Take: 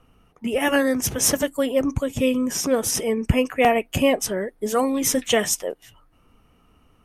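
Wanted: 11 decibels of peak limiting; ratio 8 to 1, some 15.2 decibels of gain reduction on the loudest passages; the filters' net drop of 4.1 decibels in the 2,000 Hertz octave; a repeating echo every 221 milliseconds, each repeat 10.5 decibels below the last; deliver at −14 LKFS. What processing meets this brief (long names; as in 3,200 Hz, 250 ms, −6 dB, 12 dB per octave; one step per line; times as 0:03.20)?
parametric band 2,000 Hz −5 dB
downward compressor 8 to 1, threshold −30 dBFS
brickwall limiter −30 dBFS
repeating echo 221 ms, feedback 30%, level −10.5 dB
level +24 dB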